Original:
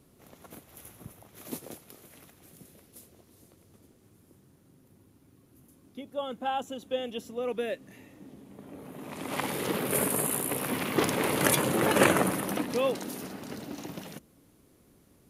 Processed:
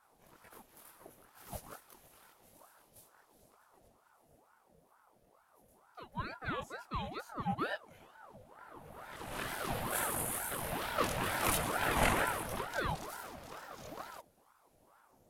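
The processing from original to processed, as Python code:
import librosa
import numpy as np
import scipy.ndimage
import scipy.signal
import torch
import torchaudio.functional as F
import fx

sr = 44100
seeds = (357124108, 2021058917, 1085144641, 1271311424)

y = fx.chorus_voices(x, sr, voices=6, hz=0.54, base_ms=23, depth_ms=3.6, mix_pct=50)
y = fx.ring_lfo(y, sr, carrier_hz=750.0, swing_pct=60, hz=2.2)
y = y * librosa.db_to_amplitude(-1.5)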